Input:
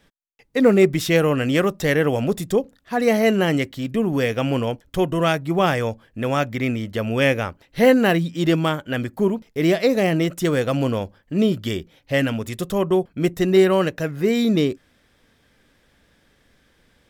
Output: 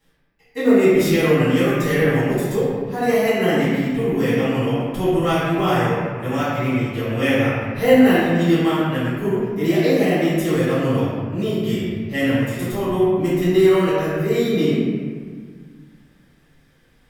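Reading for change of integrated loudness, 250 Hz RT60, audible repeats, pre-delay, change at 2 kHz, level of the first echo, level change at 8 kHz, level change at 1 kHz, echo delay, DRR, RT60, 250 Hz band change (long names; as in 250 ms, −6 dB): +1.5 dB, 2.3 s, no echo audible, 4 ms, +1.0 dB, no echo audible, 0.0 dB, +1.5 dB, no echo audible, −13.5 dB, 1.8 s, +2.5 dB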